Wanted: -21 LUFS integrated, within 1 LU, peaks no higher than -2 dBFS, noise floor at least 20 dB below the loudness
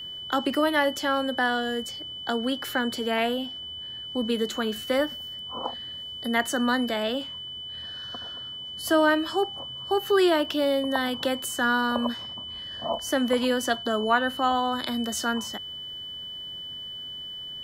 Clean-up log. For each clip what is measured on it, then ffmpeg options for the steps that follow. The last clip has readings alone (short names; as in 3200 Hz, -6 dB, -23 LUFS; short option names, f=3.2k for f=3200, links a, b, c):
steady tone 3000 Hz; tone level -35 dBFS; loudness -27.0 LUFS; peak -9.0 dBFS; loudness target -21.0 LUFS
-> -af "bandreject=f=3k:w=30"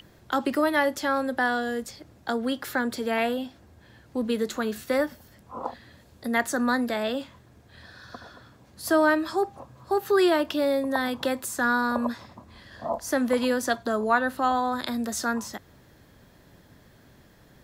steady tone none; loudness -26.5 LUFS; peak -9.5 dBFS; loudness target -21.0 LUFS
-> -af "volume=5.5dB"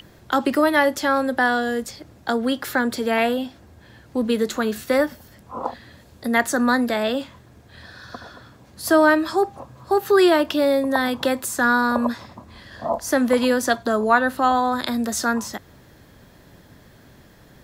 loudness -21.0 LUFS; peak -4.0 dBFS; noise floor -50 dBFS